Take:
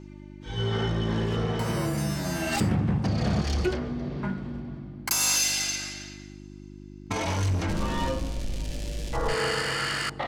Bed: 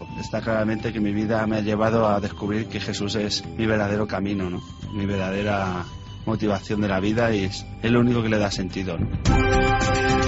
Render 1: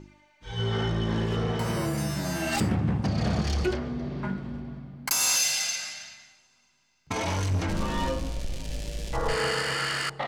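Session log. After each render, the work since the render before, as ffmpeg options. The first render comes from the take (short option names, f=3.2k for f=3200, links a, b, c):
-af "bandreject=f=50:t=h:w=4,bandreject=f=100:t=h:w=4,bandreject=f=150:t=h:w=4,bandreject=f=200:t=h:w=4,bandreject=f=250:t=h:w=4,bandreject=f=300:t=h:w=4,bandreject=f=350:t=h:w=4,bandreject=f=400:t=h:w=4,bandreject=f=450:t=h:w=4,bandreject=f=500:t=h:w=4"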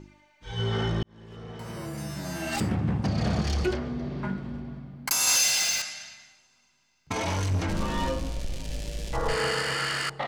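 -filter_complex "[0:a]asettb=1/sr,asplit=3[a][b][c];[a]atrim=end=5.274[d];[b]atrim=start=5.27:end=5.82,asetpts=PTS-STARTPTS,afade=t=in:d=0.004:c=qsin,afade=t=out:st=0.546:d=0.004:c=qsin,aeval=exprs='val(0)+0.5*0.0376*sgn(val(0))':c=same[e];[c]atrim=start=5.816[f];[d][e]acrossfade=d=0.004:c1=hsin:c2=qsin[g];[g][f]acrossfade=d=0.004:c1=qsin:c2=hsin,asplit=2[h][i];[h]atrim=end=1.03,asetpts=PTS-STARTPTS,afade=t=out:st=1.026:d=0.004:c=hsin[j];[i]atrim=start=1.03,asetpts=PTS-STARTPTS,afade=t=in:d=2.03[k];[j][k]concat=n=2:v=0:a=1"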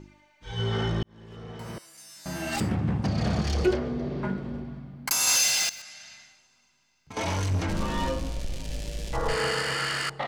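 -filter_complex "[0:a]asettb=1/sr,asplit=3[a][b][c];[a]atrim=end=1.784[d];[b]atrim=start=1.78:end=2.26,asetpts=PTS-STARTPTS,afade=t=in:d=0.004:c=qsin,afade=t=out:st=0.476:d=0.004:c=qsin,bandpass=f=7.9k:t=q:w=0.82[e];[c]atrim=start=2.256[f];[d][e]acrossfade=d=0.004:c1=hsin:c2=qsin[g];[g][f]acrossfade=d=0.004:c1=qsin:c2=hsin,asettb=1/sr,asplit=3[h][i][j];[h]atrim=end=3.544[k];[i]atrim=start=3.54:end=4.64,asetpts=PTS-STARTPTS,afade=t=in:d=0.004:c=qsin,afade=t=out:st=1.096:d=0.004:c=qsin,equalizer=f=460:w=1.5:g=7[l];[j]atrim=start=4.636[m];[k][l]acrossfade=d=0.004:c1=hsin:c2=qsin[n];[n][m]acrossfade=d=0.004:c1=qsin:c2=hsin,asettb=1/sr,asplit=3[o][p][q];[o]atrim=end=5.694[r];[p]atrim=start=5.69:end=7.17,asetpts=PTS-STARTPTS,afade=t=in:d=0.004:c=qsin,afade=t=out:st=1.476:d=0.004:c=qsin,acompressor=threshold=-42dB:ratio=4:attack=3.2:release=140:knee=1:detection=peak[s];[q]atrim=start=7.166[t];[r][s]acrossfade=d=0.004:c1=hsin:c2=qsin[u];[u][t]acrossfade=d=0.004:c1=qsin:c2=hsin"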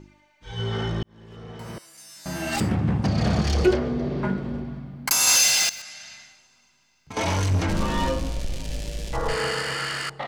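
-af "dynaudnorm=f=860:g=5:m=4.5dB"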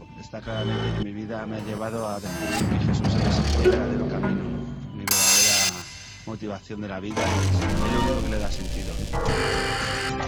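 -filter_complex "[1:a]volume=-9.5dB[a];[0:a][a]amix=inputs=2:normalize=0"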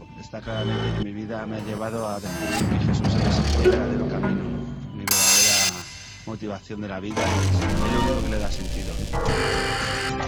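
-af "volume=1dB"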